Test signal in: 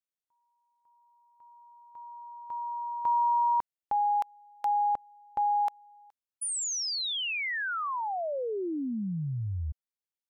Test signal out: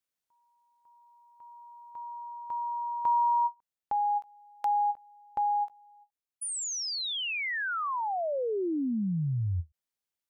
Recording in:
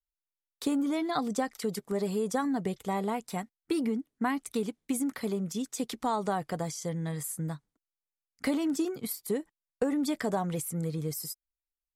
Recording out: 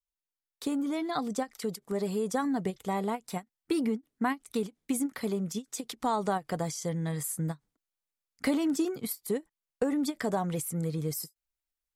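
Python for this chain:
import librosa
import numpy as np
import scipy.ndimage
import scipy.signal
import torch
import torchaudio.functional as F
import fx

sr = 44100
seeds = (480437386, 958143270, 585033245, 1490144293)

y = fx.rider(x, sr, range_db=5, speed_s=2.0)
y = fx.end_taper(y, sr, db_per_s=450.0)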